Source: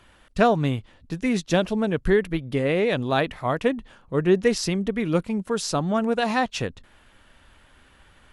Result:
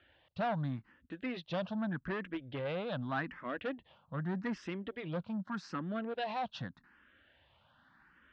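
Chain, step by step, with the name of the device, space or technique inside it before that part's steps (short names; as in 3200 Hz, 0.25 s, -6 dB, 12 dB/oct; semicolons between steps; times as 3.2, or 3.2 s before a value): barber-pole phaser into a guitar amplifier (endless phaser +0.83 Hz; soft clip -22.5 dBFS, distortion -10 dB; speaker cabinet 96–3800 Hz, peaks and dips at 420 Hz -8 dB, 1600 Hz +5 dB, 2300 Hz -4 dB); gain -7 dB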